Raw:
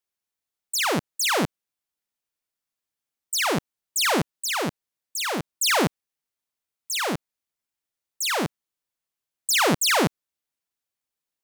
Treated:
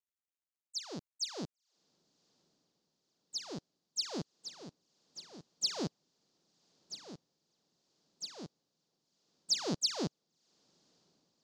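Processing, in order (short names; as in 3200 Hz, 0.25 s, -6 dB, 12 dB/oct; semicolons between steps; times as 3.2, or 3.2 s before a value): EQ curve 380 Hz 0 dB, 2200 Hz -13 dB, 4700 Hz +4 dB, 8200 Hz -15 dB, 12000 Hz -24 dB; crackle 220/s -52 dBFS; bell 6800 Hz +9.5 dB 0.57 oct; on a send: diffused feedback echo 1.086 s, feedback 54%, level -15 dB; on the sum: upward expander 2.5:1, over -35 dBFS; gain -8.5 dB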